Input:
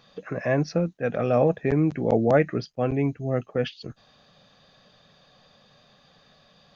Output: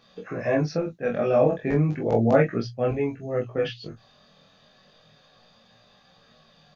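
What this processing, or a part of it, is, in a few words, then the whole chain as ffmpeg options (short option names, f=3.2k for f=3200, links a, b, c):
double-tracked vocal: -filter_complex "[0:a]asplit=2[a][b];[b]adelay=26,volume=-4dB[c];[a][c]amix=inputs=2:normalize=0,flanger=delay=16.5:depth=5:speed=0.34,bandreject=f=60:t=h:w=6,bandreject=f=120:t=h:w=6,asplit=2[d][e];[e]adelay=18,volume=-13dB[f];[d][f]amix=inputs=2:normalize=0,volume=1.5dB"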